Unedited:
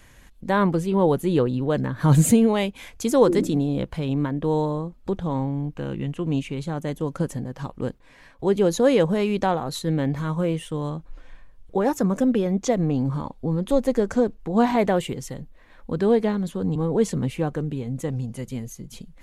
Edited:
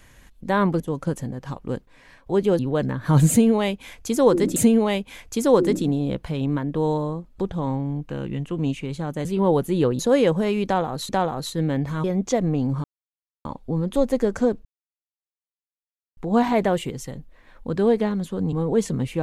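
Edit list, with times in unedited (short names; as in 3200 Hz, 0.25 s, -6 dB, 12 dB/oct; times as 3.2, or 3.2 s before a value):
0.8–1.54 swap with 6.93–8.72
2.24–3.51 loop, 2 plays
9.38–9.82 loop, 2 plays
10.33–12.4 cut
13.2 insert silence 0.61 s
14.4 insert silence 1.52 s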